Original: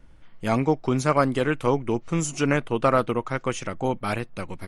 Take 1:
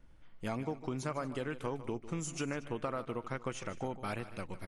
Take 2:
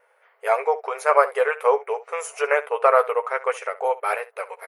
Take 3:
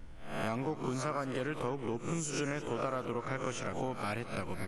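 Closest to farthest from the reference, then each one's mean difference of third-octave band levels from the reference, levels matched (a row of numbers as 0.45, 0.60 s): 1, 3, 2; 4.0, 7.0, 12.5 dB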